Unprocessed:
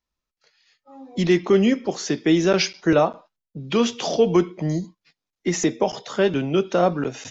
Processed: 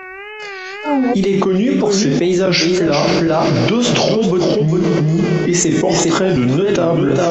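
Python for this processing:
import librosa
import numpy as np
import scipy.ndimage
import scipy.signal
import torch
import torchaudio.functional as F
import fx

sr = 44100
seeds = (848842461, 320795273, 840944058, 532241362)

p1 = fx.doppler_pass(x, sr, speed_mps=9, closest_m=1.6, pass_at_s=2.58)
p2 = fx.low_shelf(p1, sr, hz=350.0, db=6.5)
p3 = fx.rider(p2, sr, range_db=4, speed_s=0.5)
p4 = p2 + (p3 * 10.0 ** (2.0 / 20.0))
p5 = fx.dmg_buzz(p4, sr, base_hz=400.0, harmonics=7, level_db=-67.0, tilt_db=-1, odd_only=False)
p6 = fx.doubler(p5, sr, ms=32.0, db=-8.5)
p7 = p6 + fx.echo_single(p6, sr, ms=400, db=-8.5, dry=0)
p8 = fx.wow_flutter(p7, sr, seeds[0], rate_hz=2.1, depth_cents=120.0)
p9 = fx.rev_double_slope(p8, sr, seeds[1], early_s=0.27, late_s=4.0, knee_db=-18, drr_db=10.0)
p10 = fx.env_flatten(p9, sr, amount_pct=100)
y = p10 * 10.0 ** (-5.0 / 20.0)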